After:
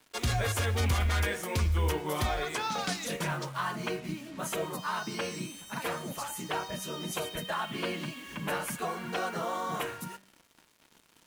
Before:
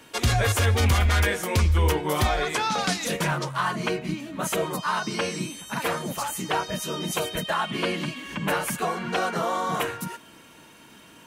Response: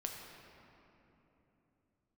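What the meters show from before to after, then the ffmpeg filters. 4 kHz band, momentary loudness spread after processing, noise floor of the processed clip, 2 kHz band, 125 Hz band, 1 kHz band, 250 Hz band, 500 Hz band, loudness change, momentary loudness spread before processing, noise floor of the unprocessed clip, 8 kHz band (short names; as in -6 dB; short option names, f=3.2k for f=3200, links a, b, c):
-7.0 dB, 9 LU, -65 dBFS, -7.5 dB, -7.5 dB, -7.5 dB, -7.5 dB, -7.0 dB, -7.0 dB, 9 LU, -51 dBFS, -7.0 dB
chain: -af "acrusher=bits=6:mix=0:aa=0.5,bandreject=f=96.02:t=h:w=4,bandreject=f=192.04:t=h:w=4,bandreject=f=288.06:t=h:w=4,bandreject=f=384.08:t=h:w=4,bandreject=f=480.1:t=h:w=4,bandreject=f=576.12:t=h:w=4,bandreject=f=672.14:t=h:w=4,bandreject=f=768.16:t=h:w=4,bandreject=f=864.18:t=h:w=4,bandreject=f=960.2:t=h:w=4,bandreject=f=1.05622k:t=h:w=4,bandreject=f=1.15224k:t=h:w=4,bandreject=f=1.24826k:t=h:w=4,bandreject=f=1.34428k:t=h:w=4,bandreject=f=1.4403k:t=h:w=4,bandreject=f=1.53632k:t=h:w=4,bandreject=f=1.63234k:t=h:w=4,bandreject=f=1.72836k:t=h:w=4,bandreject=f=1.82438k:t=h:w=4,bandreject=f=1.9204k:t=h:w=4,bandreject=f=2.01642k:t=h:w=4,bandreject=f=2.11244k:t=h:w=4,bandreject=f=2.20846k:t=h:w=4,bandreject=f=2.30448k:t=h:w=4,bandreject=f=2.4005k:t=h:w=4,bandreject=f=2.49652k:t=h:w=4,bandreject=f=2.59254k:t=h:w=4,bandreject=f=2.68856k:t=h:w=4,bandreject=f=2.78458k:t=h:w=4,bandreject=f=2.8806k:t=h:w=4,bandreject=f=2.97662k:t=h:w=4,bandreject=f=3.07264k:t=h:w=4,bandreject=f=3.16866k:t=h:w=4,volume=-7dB"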